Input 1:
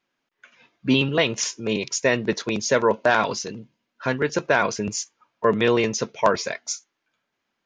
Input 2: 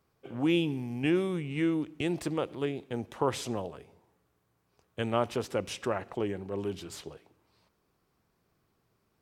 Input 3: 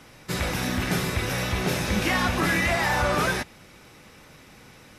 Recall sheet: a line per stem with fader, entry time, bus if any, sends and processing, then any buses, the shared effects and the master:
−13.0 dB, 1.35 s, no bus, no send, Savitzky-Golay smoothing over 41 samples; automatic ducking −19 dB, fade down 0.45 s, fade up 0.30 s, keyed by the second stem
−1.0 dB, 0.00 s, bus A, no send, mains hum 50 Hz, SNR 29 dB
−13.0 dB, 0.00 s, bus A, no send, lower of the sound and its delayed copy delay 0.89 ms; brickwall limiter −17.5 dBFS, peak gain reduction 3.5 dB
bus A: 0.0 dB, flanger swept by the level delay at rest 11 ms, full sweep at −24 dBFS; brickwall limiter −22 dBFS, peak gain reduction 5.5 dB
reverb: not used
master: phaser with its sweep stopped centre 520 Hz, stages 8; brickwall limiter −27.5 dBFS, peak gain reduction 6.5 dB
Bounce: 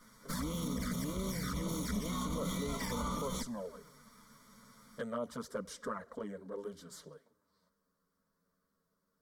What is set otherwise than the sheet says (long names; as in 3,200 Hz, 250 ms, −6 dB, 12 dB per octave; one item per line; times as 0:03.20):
stem 1: muted
stem 2: missing mains hum 50 Hz, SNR 29 dB
stem 3 −13.0 dB → −2.0 dB